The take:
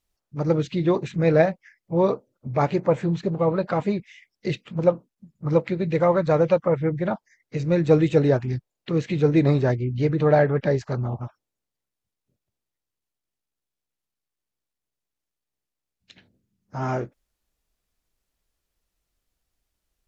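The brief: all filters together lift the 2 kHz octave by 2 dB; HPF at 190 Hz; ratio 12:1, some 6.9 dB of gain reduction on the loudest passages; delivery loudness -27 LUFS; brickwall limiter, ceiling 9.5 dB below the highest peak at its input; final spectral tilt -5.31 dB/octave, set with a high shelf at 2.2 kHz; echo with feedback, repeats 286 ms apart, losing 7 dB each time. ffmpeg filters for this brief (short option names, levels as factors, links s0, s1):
-af "highpass=190,equalizer=f=2000:t=o:g=5,highshelf=f=2200:g=-5,acompressor=threshold=0.112:ratio=12,alimiter=limit=0.0944:level=0:latency=1,aecho=1:1:286|572|858|1144|1430:0.447|0.201|0.0905|0.0407|0.0183,volume=1.58"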